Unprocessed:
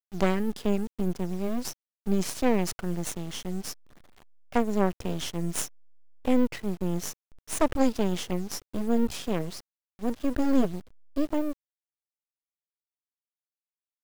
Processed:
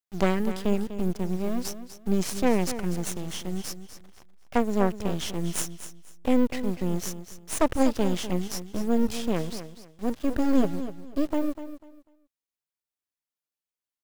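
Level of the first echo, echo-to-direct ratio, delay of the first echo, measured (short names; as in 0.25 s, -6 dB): -12.0 dB, -11.5 dB, 0.247 s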